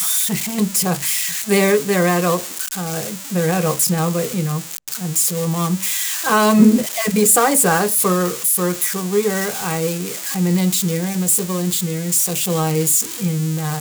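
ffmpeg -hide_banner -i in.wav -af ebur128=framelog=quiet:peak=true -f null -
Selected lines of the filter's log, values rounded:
Integrated loudness:
  I:         -17.2 LUFS
  Threshold: -27.2 LUFS
Loudness range:
  LRA:         4.5 LU
  Threshold: -37.2 LUFS
  LRA low:   -19.3 LUFS
  LRA high:  -14.8 LUFS
True peak:
  Peak:       -0.9 dBFS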